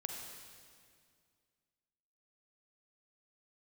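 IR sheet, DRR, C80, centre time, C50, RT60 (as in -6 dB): 2.0 dB, 4.0 dB, 72 ms, 2.5 dB, 2.1 s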